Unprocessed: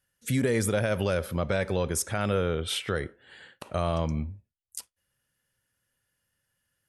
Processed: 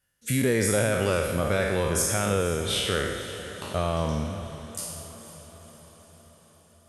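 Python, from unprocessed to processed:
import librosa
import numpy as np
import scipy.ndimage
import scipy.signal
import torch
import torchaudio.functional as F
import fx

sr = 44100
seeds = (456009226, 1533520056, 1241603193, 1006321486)

y = fx.spec_trails(x, sr, decay_s=1.16)
y = fx.echo_diffused(y, sr, ms=492, feedback_pct=59, wet_db=-13)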